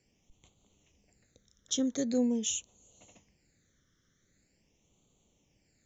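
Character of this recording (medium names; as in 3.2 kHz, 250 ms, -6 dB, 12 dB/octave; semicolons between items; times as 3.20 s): phasing stages 12, 0.44 Hz, lowest notch 800–1700 Hz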